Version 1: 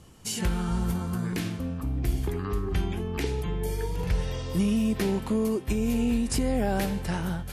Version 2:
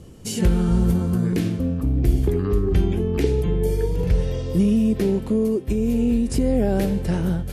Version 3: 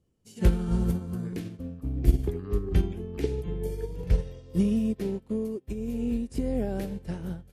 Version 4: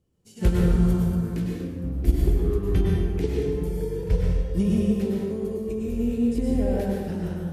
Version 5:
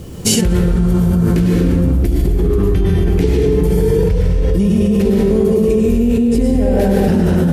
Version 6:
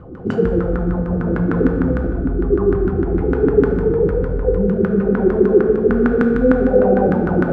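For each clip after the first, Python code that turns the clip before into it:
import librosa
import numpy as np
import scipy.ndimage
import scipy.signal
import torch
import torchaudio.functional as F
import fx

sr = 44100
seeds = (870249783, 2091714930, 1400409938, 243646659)

y1 = fx.low_shelf_res(x, sr, hz=660.0, db=7.5, q=1.5)
y1 = fx.rider(y1, sr, range_db=4, speed_s=2.0)
y1 = y1 * librosa.db_to_amplitude(-1.0)
y2 = fx.upward_expand(y1, sr, threshold_db=-32.0, expansion=2.5)
y3 = fx.rev_plate(y2, sr, seeds[0], rt60_s=1.5, hf_ratio=0.6, predelay_ms=90, drr_db=-3.0)
y4 = y3 + 10.0 ** (-15.0 / 20.0) * np.pad(y3, (int(936 * sr / 1000.0), 0))[:len(y3)]
y4 = fx.env_flatten(y4, sr, amount_pct=100)
y4 = y4 * librosa.db_to_amplitude(1.0)
y5 = fx.filter_lfo_lowpass(y4, sr, shape='saw_down', hz=6.6, low_hz=240.0, high_hz=1500.0, q=7.2)
y5 = fx.rev_fdn(y5, sr, rt60_s=1.4, lf_ratio=1.0, hf_ratio=0.8, size_ms=12.0, drr_db=3.0)
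y5 = y5 * librosa.db_to_amplitude(-9.0)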